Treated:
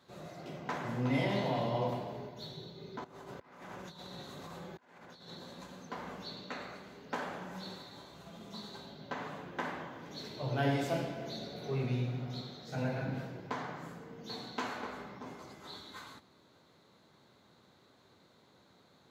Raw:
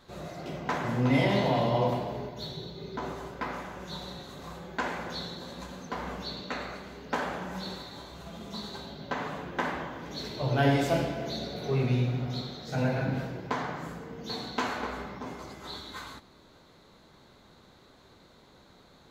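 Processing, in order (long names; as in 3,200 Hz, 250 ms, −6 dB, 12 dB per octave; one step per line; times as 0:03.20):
0:03.04–0:05.32: compressor whose output falls as the input rises −42 dBFS, ratio −0.5
high-pass filter 86 Hz 24 dB per octave
level −7 dB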